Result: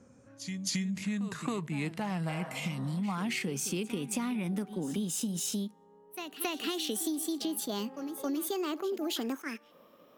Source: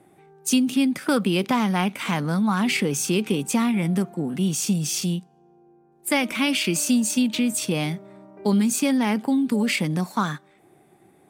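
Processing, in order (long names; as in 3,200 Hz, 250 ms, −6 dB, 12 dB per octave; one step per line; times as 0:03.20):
gliding playback speed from 67% → 155%
on a send: backwards echo 273 ms −15.5 dB
on the sum: downward compressor 6 to 1, threshold −27 dBFS, peak gain reduction 12 dB
healed spectral selection 0:02.32–0:02.96, 390–2,000 Hz both
level that may rise only so fast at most 350 dB per second
level −3.5 dB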